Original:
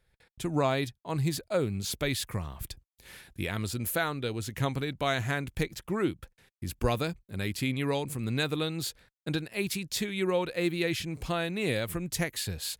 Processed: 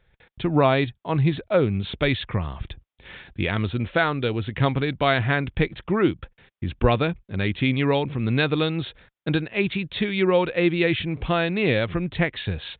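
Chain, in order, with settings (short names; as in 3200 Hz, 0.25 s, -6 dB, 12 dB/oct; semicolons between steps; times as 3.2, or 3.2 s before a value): downsampling 8000 Hz; gain +8.5 dB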